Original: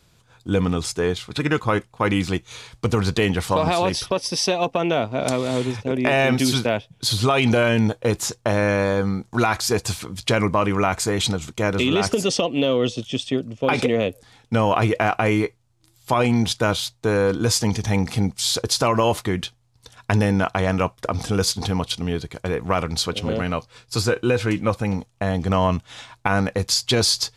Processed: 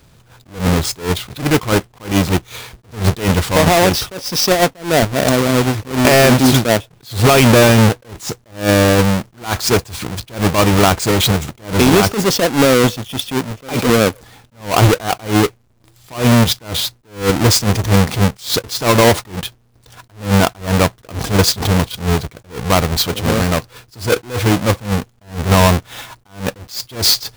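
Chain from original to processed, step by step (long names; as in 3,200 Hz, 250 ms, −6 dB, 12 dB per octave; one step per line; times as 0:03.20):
each half-wave held at its own peak
level that may rise only so fast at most 170 dB per second
level +4.5 dB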